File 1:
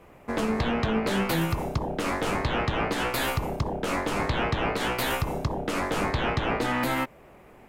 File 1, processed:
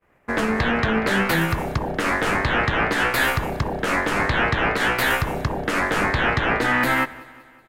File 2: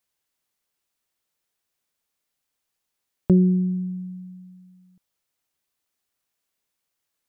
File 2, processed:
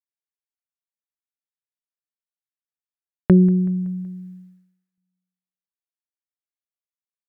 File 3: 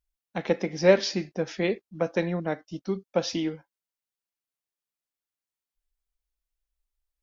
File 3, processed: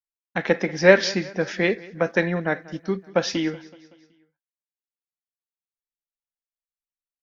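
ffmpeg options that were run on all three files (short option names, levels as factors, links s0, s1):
-filter_complex "[0:a]agate=range=0.0224:threshold=0.00891:ratio=3:detection=peak,equalizer=f=1700:w=1.9:g=9.5,asplit=2[s0][s1];[s1]aecho=0:1:188|376|564|752:0.0891|0.0481|0.026|0.014[s2];[s0][s2]amix=inputs=2:normalize=0,volume=1.5"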